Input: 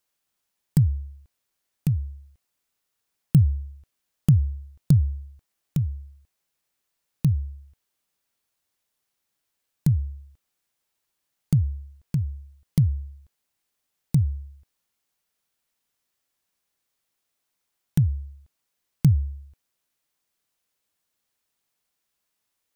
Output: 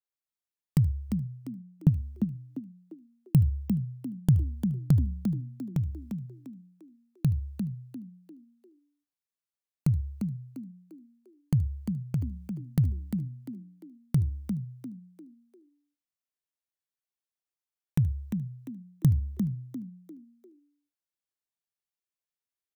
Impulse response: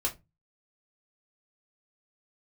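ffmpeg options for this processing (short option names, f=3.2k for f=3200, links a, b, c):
-filter_complex "[0:a]asplit=2[a][b];[b]aecho=0:1:75:0.106[c];[a][c]amix=inputs=2:normalize=0,agate=range=-14dB:threshold=-43dB:ratio=16:detection=peak,asplit=3[d][e][f];[d]afade=t=out:st=1.09:d=0.02[g];[e]tiltshelf=f=970:g=8.5,afade=t=in:st=1.09:d=0.02,afade=t=out:st=1.88:d=0.02[h];[f]afade=t=in:st=1.88:d=0.02[i];[g][h][i]amix=inputs=3:normalize=0,asplit=2[j][k];[k]asplit=4[l][m][n][o];[l]adelay=348,afreqshift=55,volume=-7dB[p];[m]adelay=696,afreqshift=110,volume=-16.4dB[q];[n]adelay=1044,afreqshift=165,volume=-25.7dB[r];[o]adelay=1392,afreqshift=220,volume=-35.1dB[s];[p][q][r][s]amix=inputs=4:normalize=0[t];[j][t]amix=inputs=2:normalize=0,adynamicequalizer=threshold=0.00141:dfrequency=3700:dqfactor=0.7:tfrequency=3700:tqfactor=0.7:attack=5:release=100:ratio=0.375:range=2:mode=cutabove:tftype=highshelf,volume=-4.5dB"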